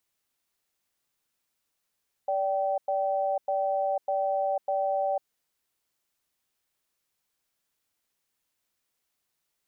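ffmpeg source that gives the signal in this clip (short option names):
-f lavfi -i "aevalsrc='0.0447*(sin(2*PI*580*t)+sin(2*PI*775*t))*clip(min(mod(t,0.6),0.5-mod(t,0.6))/0.005,0,1)':d=2.97:s=44100"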